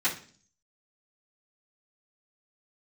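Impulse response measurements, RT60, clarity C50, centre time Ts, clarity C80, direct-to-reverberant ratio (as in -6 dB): 0.45 s, 10.0 dB, 18 ms, 15.5 dB, -13.5 dB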